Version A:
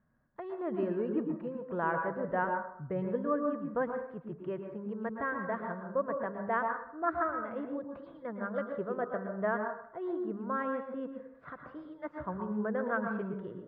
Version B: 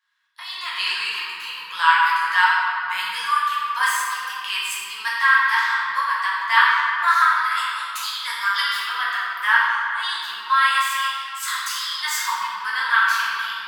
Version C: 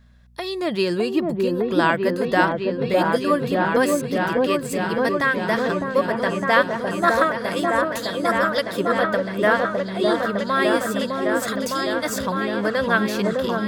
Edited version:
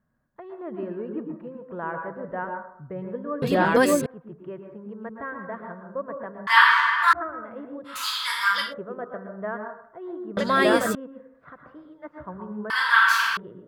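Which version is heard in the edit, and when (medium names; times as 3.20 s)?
A
3.42–4.06 s: from C
6.47–7.13 s: from B
7.96–8.62 s: from B, crossfade 0.24 s
10.37–10.95 s: from C
12.70–13.37 s: from B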